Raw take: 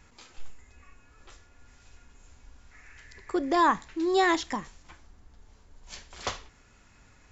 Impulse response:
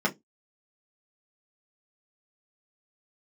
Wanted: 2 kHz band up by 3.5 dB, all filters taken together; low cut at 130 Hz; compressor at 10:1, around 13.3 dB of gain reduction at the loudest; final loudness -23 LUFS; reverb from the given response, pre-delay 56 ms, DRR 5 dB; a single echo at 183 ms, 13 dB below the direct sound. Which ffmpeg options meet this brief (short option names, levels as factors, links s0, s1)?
-filter_complex "[0:a]highpass=130,equalizer=f=2000:t=o:g=4,acompressor=threshold=0.0282:ratio=10,aecho=1:1:183:0.224,asplit=2[s0][s1];[1:a]atrim=start_sample=2205,adelay=56[s2];[s1][s2]afir=irnorm=-1:irlink=0,volume=0.15[s3];[s0][s3]amix=inputs=2:normalize=0,volume=4.47"